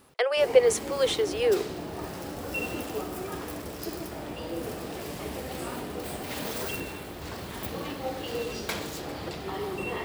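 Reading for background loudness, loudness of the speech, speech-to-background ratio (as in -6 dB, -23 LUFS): -35.0 LUFS, -24.5 LUFS, 10.5 dB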